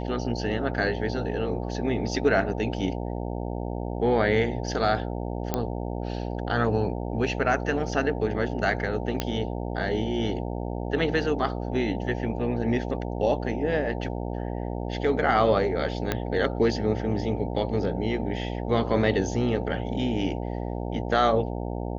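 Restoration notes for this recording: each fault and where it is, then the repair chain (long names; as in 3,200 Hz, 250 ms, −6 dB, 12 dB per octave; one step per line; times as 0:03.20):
mains buzz 60 Hz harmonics 15 −31 dBFS
0:05.54: click −11 dBFS
0:09.20: click −11 dBFS
0:16.12: click −10 dBFS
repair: click removal
hum removal 60 Hz, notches 15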